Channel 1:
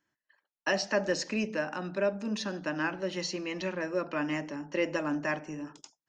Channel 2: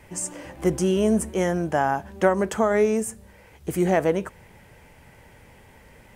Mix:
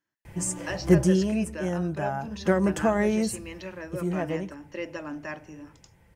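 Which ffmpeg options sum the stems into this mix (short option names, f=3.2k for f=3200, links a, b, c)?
-filter_complex "[0:a]volume=-5dB[a];[1:a]equalizer=f=88:w=0.72:g=13.5,aecho=1:1:5.9:0.47,adelay=250,volume=6dB,afade=t=out:st=0.86:d=0.47:silence=0.316228,afade=t=in:st=2.19:d=0.44:silence=0.421697,afade=t=out:st=3.47:d=0.5:silence=0.334965[b];[a][b]amix=inputs=2:normalize=0"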